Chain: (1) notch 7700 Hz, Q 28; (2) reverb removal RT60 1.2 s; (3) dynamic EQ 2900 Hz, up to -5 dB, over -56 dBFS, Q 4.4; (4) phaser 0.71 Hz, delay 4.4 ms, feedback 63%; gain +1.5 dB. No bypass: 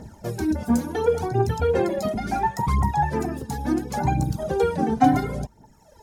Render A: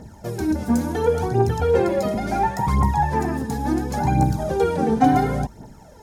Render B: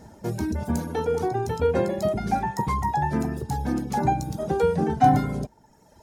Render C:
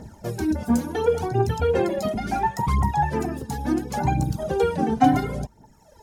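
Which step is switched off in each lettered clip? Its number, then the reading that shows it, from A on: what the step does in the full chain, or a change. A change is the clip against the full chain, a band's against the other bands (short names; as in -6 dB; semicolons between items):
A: 2, momentary loudness spread change -2 LU; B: 4, 1 kHz band +2.0 dB; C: 3, 4 kHz band +1.5 dB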